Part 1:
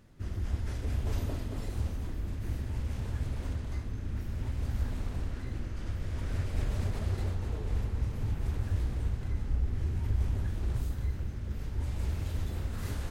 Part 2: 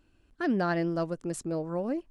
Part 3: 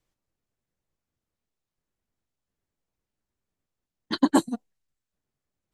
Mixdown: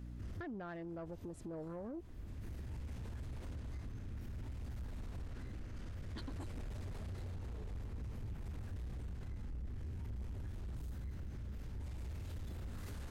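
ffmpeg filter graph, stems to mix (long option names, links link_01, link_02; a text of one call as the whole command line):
ffmpeg -i stem1.wav -i stem2.wav -i stem3.wav -filter_complex "[0:a]aeval=exprs='val(0)+0.00562*(sin(2*PI*60*n/s)+sin(2*PI*2*60*n/s)/2+sin(2*PI*3*60*n/s)/3+sin(2*PI*4*60*n/s)/4+sin(2*PI*5*60*n/s)/5)':channel_layout=same,volume=-1dB[link_01];[1:a]afwtdn=0.0112,volume=2dB,asplit=2[link_02][link_03];[2:a]adelay=2050,volume=-4dB[link_04];[link_03]apad=whole_len=578089[link_05];[link_01][link_05]sidechaincompress=threshold=-45dB:ratio=10:attack=22:release=474[link_06];[link_02][link_04]amix=inputs=2:normalize=0,acompressor=threshold=-33dB:ratio=10,volume=0dB[link_07];[link_06][link_07]amix=inputs=2:normalize=0,asoftclip=type=tanh:threshold=-29.5dB,alimiter=level_in=15.5dB:limit=-24dB:level=0:latency=1:release=103,volume=-15.5dB" out.wav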